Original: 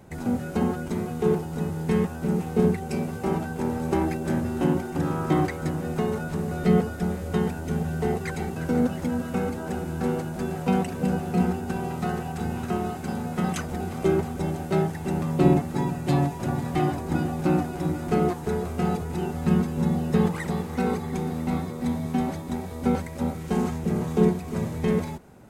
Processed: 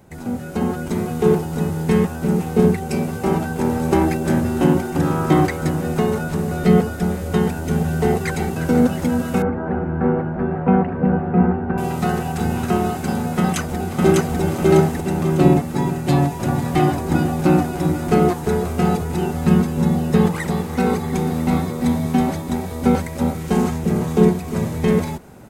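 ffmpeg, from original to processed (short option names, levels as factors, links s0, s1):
-filter_complex "[0:a]asettb=1/sr,asplit=3[s0][s1][s2];[s0]atrim=end=9.424[s3];[s1]atrim=start=9.42:end=11.78,asetpts=PTS-STARTPTS,afade=t=in:d=0.004:c=qsin,afade=t=out:st=2.356:d=0.004:c=qsin,lowpass=f=1800:w=0.5412,lowpass=f=1800:w=1.3066[s4];[s2]atrim=start=11.776[s5];[s3][s4]acrossfade=d=0.004:c1=hsin:c2=qsin[s6];[s6][s5]acrossfade=d=0.004:c1=qsin:c2=hsin,asplit=2[s7][s8];[s8]afade=t=in:st=13.38:d=0.01,afade=t=out:st=14.4:d=0.01,aecho=0:1:600|1200|1800|2400|3000|3600:1|0.4|0.16|0.064|0.0256|0.01024[s9];[s7][s9]amix=inputs=2:normalize=0,lowpass=f=3900:p=1,aemphasis=mode=production:type=50kf,dynaudnorm=f=290:g=5:m=2.66"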